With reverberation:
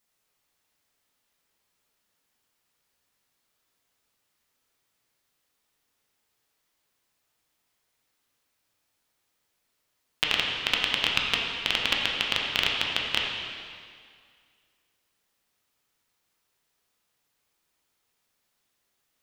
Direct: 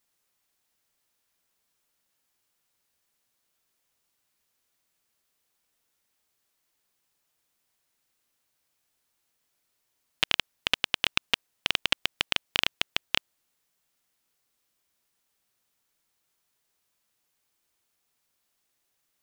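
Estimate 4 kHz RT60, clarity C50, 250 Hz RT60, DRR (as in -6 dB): 1.9 s, 1.0 dB, 2.0 s, -2.0 dB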